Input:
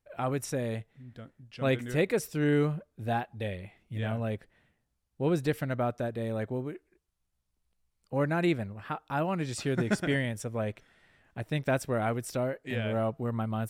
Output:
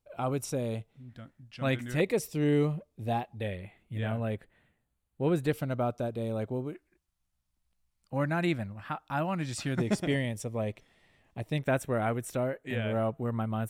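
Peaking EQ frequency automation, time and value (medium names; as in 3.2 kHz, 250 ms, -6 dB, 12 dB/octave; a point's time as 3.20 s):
peaking EQ -13.5 dB 0.33 oct
1.8 kHz
from 1.09 s 440 Hz
from 2.00 s 1.5 kHz
from 3.40 s 5.4 kHz
from 5.51 s 1.8 kHz
from 6.73 s 430 Hz
from 9.79 s 1.5 kHz
from 11.58 s 4.9 kHz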